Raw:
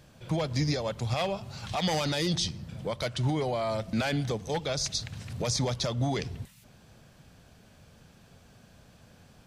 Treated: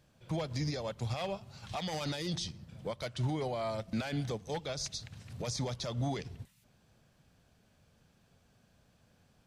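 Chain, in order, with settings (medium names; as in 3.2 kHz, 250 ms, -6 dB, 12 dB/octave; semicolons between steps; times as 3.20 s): peak limiter -22.5 dBFS, peak gain reduction 6 dB; upward expansion 1.5:1, over -44 dBFS; trim -2.5 dB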